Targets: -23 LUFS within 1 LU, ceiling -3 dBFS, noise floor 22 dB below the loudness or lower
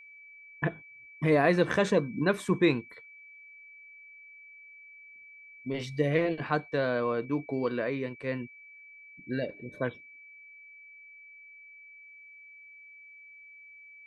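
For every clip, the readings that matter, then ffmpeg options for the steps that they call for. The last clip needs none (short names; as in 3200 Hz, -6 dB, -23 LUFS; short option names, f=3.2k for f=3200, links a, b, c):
steady tone 2300 Hz; tone level -49 dBFS; loudness -29.5 LUFS; peak -10.5 dBFS; loudness target -23.0 LUFS
-> -af "bandreject=f=2.3k:w=30"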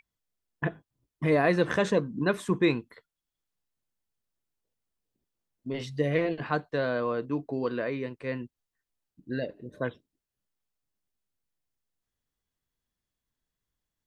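steady tone none; loudness -29.5 LUFS; peak -10.5 dBFS; loudness target -23.0 LUFS
-> -af "volume=6.5dB"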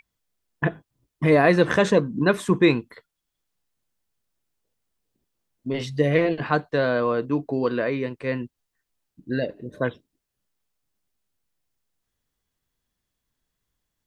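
loudness -23.0 LUFS; peak -4.0 dBFS; noise floor -82 dBFS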